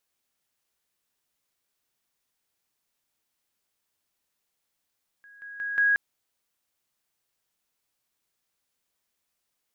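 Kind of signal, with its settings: level ladder 1.65 kHz -48.5 dBFS, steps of 10 dB, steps 4, 0.18 s 0.00 s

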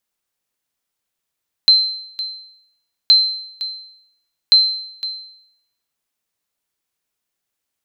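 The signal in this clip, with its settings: sonar ping 4.1 kHz, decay 0.74 s, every 1.42 s, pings 3, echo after 0.51 s, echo -15 dB -4 dBFS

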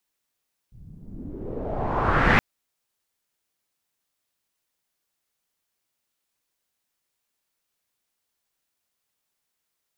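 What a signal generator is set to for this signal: swept filtered noise pink, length 1.67 s lowpass, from 110 Hz, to 2.1 kHz, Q 2.6, exponential, gain ramp +29 dB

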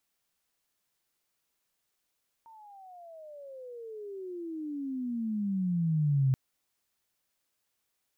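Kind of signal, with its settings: gliding synth tone sine, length 3.88 s, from 919 Hz, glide -34 st, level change +28.5 dB, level -21.5 dB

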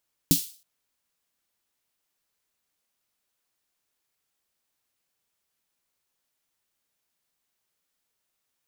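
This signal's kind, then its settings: snare drum length 0.32 s, tones 170 Hz, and 280 Hz, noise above 3.4 kHz, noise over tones -3.5 dB, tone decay 0.12 s, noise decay 0.40 s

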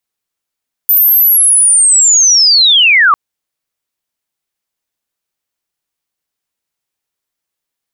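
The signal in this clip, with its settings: sweep linear 14 kHz -> 1.1 kHz -5 dBFS -> -4 dBFS 2.25 s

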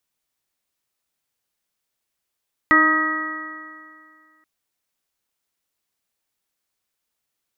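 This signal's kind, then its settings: stretched partials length 1.73 s, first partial 310 Hz, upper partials -10/-11/4/-9/5.5 dB, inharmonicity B 0.0019, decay 2.16 s, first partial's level -18 dB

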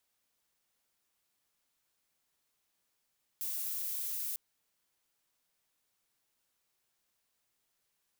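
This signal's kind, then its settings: noise violet, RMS -37 dBFS 0.95 s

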